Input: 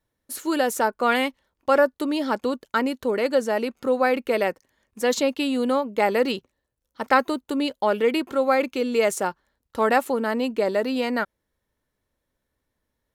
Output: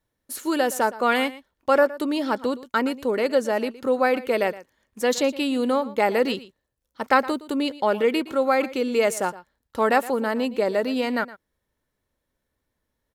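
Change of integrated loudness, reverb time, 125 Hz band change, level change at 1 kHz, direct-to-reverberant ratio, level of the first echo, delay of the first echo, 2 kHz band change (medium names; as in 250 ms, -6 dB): 0.0 dB, no reverb, no reading, 0.0 dB, no reverb, -17.5 dB, 116 ms, 0.0 dB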